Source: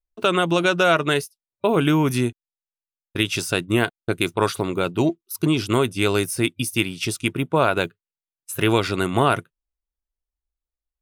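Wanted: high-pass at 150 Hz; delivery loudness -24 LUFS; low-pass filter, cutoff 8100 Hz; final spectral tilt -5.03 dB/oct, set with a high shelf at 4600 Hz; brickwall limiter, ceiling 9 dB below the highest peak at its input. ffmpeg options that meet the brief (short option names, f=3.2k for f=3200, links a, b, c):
-af "highpass=150,lowpass=8.1k,highshelf=f=4.6k:g=-3,volume=2dB,alimiter=limit=-10.5dB:level=0:latency=1"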